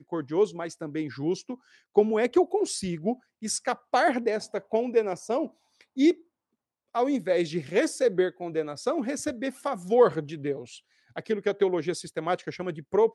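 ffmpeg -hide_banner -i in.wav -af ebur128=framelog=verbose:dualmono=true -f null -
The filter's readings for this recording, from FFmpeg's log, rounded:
Integrated loudness:
  I:         -24.4 LUFS
  Threshold: -34.7 LUFS
Loudness range:
  LRA:         1.7 LU
  Threshold: -44.6 LUFS
  LRA low:   -25.3 LUFS
  LRA high:  -23.6 LUFS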